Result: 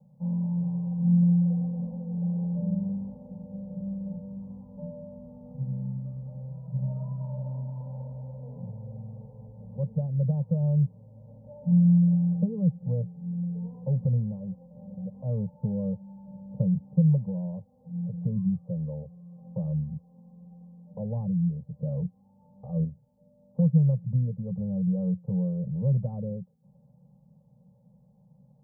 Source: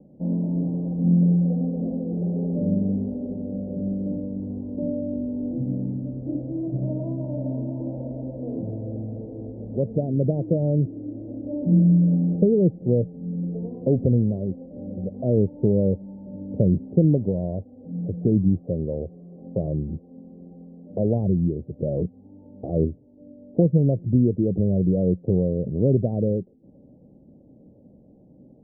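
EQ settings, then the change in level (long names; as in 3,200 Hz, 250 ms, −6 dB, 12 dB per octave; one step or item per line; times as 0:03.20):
high-pass filter 71 Hz
Chebyshev band-stop filter 140–800 Hz, order 2
phaser with its sweep stopped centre 450 Hz, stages 8
+3.0 dB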